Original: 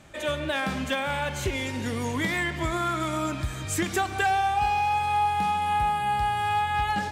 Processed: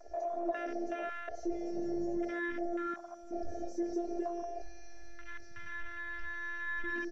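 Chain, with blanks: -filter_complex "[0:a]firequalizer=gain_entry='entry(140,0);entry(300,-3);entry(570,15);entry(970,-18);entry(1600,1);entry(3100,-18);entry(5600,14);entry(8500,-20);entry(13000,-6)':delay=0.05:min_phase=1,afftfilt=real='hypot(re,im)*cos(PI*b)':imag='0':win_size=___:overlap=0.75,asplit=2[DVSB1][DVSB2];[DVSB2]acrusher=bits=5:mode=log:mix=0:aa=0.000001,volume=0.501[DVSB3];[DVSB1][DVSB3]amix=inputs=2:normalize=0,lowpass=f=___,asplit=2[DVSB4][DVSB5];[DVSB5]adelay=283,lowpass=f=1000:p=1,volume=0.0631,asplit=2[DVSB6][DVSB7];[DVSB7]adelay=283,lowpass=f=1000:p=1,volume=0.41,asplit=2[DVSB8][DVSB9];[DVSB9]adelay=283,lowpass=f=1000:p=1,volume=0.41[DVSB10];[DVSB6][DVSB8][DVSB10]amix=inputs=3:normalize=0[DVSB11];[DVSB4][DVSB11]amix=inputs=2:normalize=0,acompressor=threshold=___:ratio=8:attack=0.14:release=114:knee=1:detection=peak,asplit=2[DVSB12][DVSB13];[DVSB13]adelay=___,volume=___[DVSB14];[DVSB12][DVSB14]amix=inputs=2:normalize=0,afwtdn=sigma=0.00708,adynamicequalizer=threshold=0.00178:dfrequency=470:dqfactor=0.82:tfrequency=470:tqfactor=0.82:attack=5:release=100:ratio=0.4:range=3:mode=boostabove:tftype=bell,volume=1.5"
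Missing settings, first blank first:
512, 8700, 0.02, 21, 0.531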